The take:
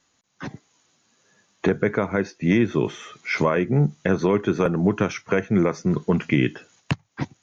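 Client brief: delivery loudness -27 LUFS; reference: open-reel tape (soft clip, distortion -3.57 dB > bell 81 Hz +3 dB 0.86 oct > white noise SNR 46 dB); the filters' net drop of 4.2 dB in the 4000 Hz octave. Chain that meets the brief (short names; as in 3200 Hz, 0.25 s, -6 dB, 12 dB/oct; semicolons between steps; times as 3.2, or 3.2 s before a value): bell 4000 Hz -6 dB; soft clip -29 dBFS; bell 81 Hz +3 dB 0.86 oct; white noise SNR 46 dB; gain +7 dB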